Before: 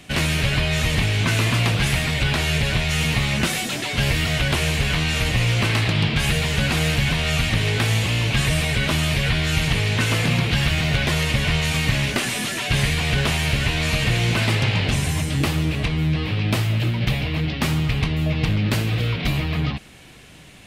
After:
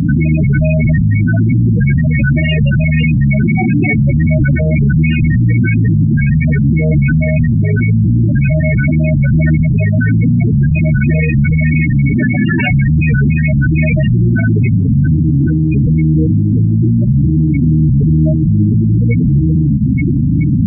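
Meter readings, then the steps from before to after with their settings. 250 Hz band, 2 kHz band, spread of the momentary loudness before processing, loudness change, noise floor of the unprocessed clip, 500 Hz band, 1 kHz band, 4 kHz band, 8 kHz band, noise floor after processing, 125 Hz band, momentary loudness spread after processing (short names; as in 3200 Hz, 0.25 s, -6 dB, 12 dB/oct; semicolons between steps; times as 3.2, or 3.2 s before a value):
+14.0 dB, +2.0 dB, 3 LU, +9.0 dB, -29 dBFS, +5.0 dB, n/a, under -10 dB, under -40 dB, -13 dBFS, +11.5 dB, 1 LU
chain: per-bin compression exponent 0.4; recorder AGC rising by 40 dB/s; LPF 2900 Hz 12 dB/oct; Schroeder reverb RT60 2.7 s, combs from 33 ms, DRR 17 dB; loudest bins only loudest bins 8; HPF 250 Hz 6 dB/oct; maximiser +26 dB; gain -4 dB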